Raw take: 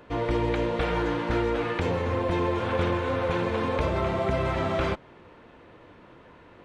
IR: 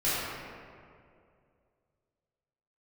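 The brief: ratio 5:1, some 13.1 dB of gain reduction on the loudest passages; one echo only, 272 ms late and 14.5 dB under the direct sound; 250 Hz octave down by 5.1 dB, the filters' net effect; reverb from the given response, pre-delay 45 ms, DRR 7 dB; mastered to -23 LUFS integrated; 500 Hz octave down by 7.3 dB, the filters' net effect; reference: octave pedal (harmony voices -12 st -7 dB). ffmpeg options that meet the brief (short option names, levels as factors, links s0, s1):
-filter_complex "[0:a]equalizer=f=250:t=o:g=-4,equalizer=f=500:t=o:g=-8,acompressor=threshold=0.01:ratio=5,aecho=1:1:272:0.188,asplit=2[s0][s1];[1:a]atrim=start_sample=2205,adelay=45[s2];[s1][s2]afir=irnorm=-1:irlink=0,volume=0.112[s3];[s0][s3]amix=inputs=2:normalize=0,asplit=2[s4][s5];[s5]asetrate=22050,aresample=44100,atempo=2,volume=0.447[s6];[s4][s6]amix=inputs=2:normalize=0,volume=7.94"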